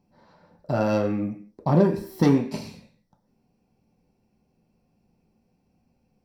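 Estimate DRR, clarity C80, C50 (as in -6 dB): 1.5 dB, 15.5 dB, 11.0 dB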